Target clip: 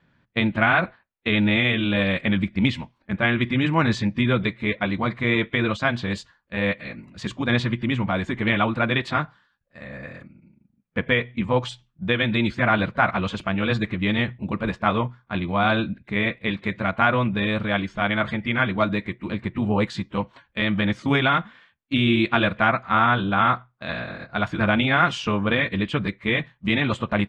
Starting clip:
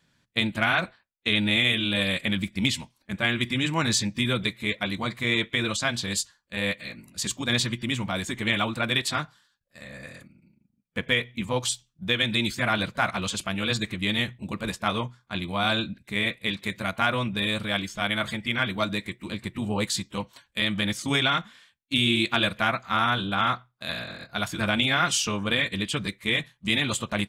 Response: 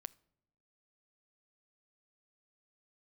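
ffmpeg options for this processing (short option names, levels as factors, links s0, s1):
-af "lowpass=2000,volume=2"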